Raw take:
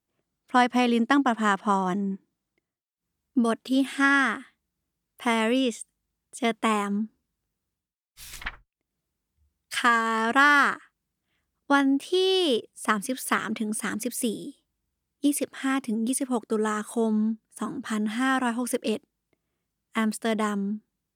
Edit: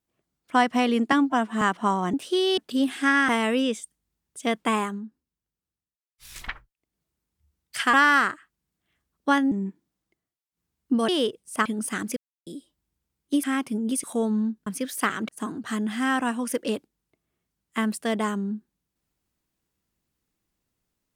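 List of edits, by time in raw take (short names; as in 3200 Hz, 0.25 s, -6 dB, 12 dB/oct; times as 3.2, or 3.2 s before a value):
1.12–1.45 stretch 1.5×
1.97–3.54 swap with 11.94–12.38
4.25–5.26 cut
6.81–8.32 dip -8.5 dB, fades 0.16 s
9.91–10.36 cut
12.95–13.57 move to 17.48
14.08–14.38 mute
15.35–15.61 cut
16.21–16.85 cut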